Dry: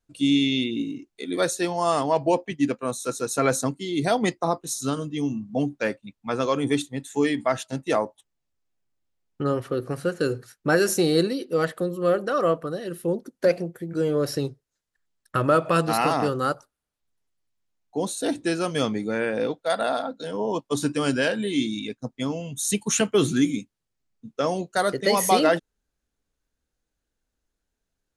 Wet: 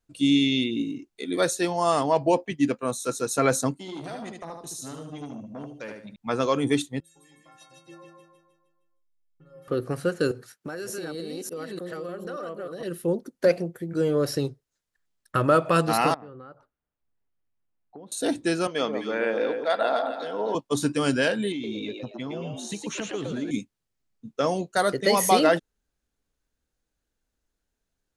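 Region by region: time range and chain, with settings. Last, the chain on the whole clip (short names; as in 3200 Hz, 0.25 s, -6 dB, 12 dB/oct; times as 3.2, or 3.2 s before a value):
3.76–6.16 compressor 3:1, threshold -36 dBFS + feedback echo 75 ms, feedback 31%, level -5 dB + core saturation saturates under 820 Hz
7–9.68 compressor 10:1, threshold -29 dBFS + metallic resonator 160 Hz, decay 0.76 s, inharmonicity 0.03 + feedback echo 0.155 s, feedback 47%, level -3.5 dB
10.31–12.83 reverse delay 0.296 s, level -1.5 dB + HPF 150 Hz + compressor, threshold -32 dBFS
16.14–18.12 compressor 8:1, threshold -39 dBFS + air absorption 460 m
18.67–20.55 BPF 340–4200 Hz + echo with dull and thin repeats by turns 0.13 s, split 1000 Hz, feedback 58%, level -5 dB + mismatched tape noise reduction decoder only
21.52–23.51 LPF 3700 Hz + compressor, threshold -29 dBFS + frequency-shifting echo 0.114 s, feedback 32%, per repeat +97 Hz, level -4.5 dB
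whole clip: dry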